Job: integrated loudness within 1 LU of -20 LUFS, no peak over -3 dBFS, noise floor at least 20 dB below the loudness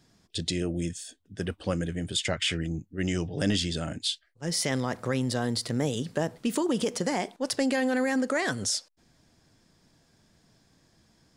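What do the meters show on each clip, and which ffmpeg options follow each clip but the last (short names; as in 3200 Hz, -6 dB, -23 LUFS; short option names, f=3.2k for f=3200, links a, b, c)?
loudness -29.0 LUFS; peak -14.0 dBFS; loudness target -20.0 LUFS
-> -af "volume=9dB"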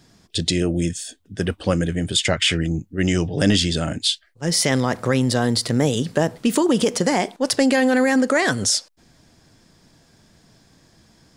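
loudness -20.0 LUFS; peak -5.0 dBFS; noise floor -57 dBFS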